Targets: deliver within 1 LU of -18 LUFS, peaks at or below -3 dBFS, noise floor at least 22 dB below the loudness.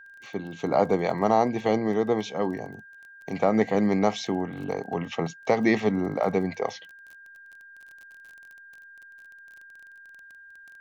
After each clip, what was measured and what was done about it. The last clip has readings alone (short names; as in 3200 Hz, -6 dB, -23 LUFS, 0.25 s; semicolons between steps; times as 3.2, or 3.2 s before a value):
ticks 24/s; steady tone 1600 Hz; tone level -46 dBFS; loudness -26.0 LUFS; peak -8.0 dBFS; loudness target -18.0 LUFS
-> de-click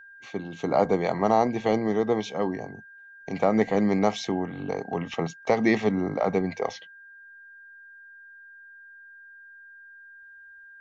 ticks 0.093/s; steady tone 1600 Hz; tone level -46 dBFS
-> notch 1600 Hz, Q 30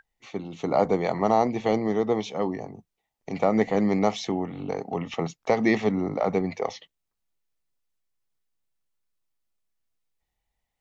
steady tone none; loudness -25.5 LUFS; peak -8.0 dBFS; loudness target -18.0 LUFS
-> gain +7.5 dB; limiter -3 dBFS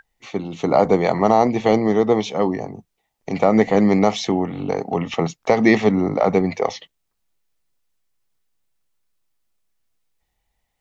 loudness -18.5 LUFS; peak -3.0 dBFS; noise floor -75 dBFS